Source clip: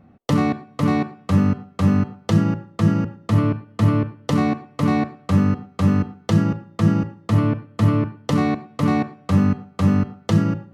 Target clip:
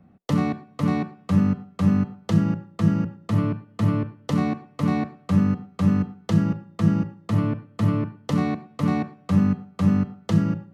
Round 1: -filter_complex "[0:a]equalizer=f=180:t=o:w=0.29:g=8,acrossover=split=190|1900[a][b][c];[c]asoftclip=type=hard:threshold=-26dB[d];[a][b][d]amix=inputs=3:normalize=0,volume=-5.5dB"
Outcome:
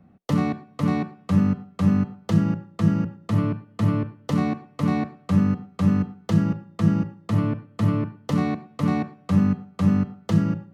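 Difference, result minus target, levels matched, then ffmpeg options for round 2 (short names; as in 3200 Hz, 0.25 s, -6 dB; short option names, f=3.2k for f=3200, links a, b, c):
hard clip: distortion +13 dB
-filter_complex "[0:a]equalizer=f=180:t=o:w=0.29:g=8,acrossover=split=190|1900[a][b][c];[c]asoftclip=type=hard:threshold=-18.5dB[d];[a][b][d]amix=inputs=3:normalize=0,volume=-5.5dB"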